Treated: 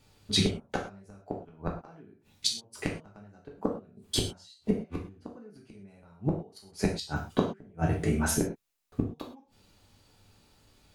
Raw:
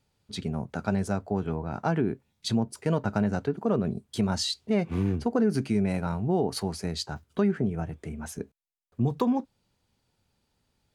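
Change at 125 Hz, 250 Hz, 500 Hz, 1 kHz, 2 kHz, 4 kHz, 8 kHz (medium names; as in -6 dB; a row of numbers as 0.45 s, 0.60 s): -4.5 dB, -6.5 dB, -6.0 dB, -5.5 dB, -0.5 dB, +2.5 dB, +4.5 dB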